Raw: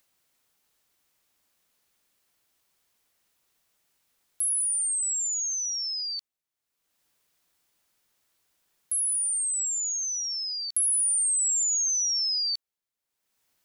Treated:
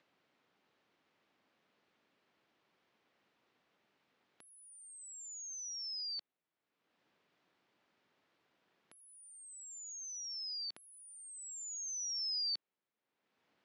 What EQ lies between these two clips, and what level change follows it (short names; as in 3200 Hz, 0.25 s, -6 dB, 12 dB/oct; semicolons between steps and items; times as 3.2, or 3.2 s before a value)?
BPF 240–3200 Hz; air absorption 82 m; low shelf 350 Hz +11 dB; +2.5 dB